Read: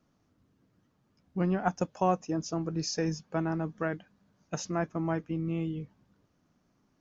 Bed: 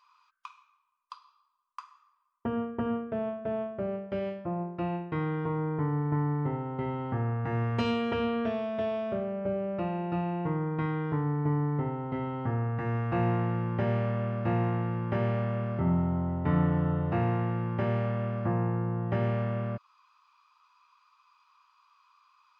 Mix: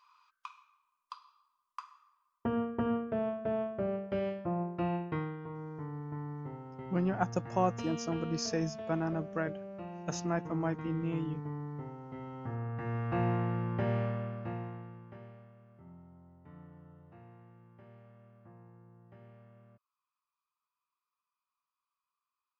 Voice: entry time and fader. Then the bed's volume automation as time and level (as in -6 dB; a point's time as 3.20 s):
5.55 s, -2.5 dB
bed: 5.10 s -1 dB
5.38 s -12 dB
12.08 s -12 dB
13.14 s -3.5 dB
14.03 s -3.5 dB
15.56 s -27.5 dB